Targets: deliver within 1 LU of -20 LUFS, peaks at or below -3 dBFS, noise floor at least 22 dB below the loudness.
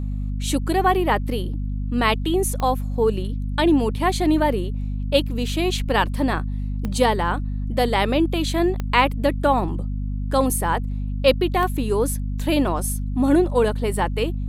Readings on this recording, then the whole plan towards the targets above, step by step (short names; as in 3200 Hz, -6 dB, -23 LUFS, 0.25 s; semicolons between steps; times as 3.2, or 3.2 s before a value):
clicks 4; hum 50 Hz; harmonics up to 250 Hz; hum level -23 dBFS; loudness -22.0 LUFS; peak -2.5 dBFS; loudness target -20.0 LUFS
-> de-click; de-hum 50 Hz, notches 5; gain +2 dB; limiter -3 dBFS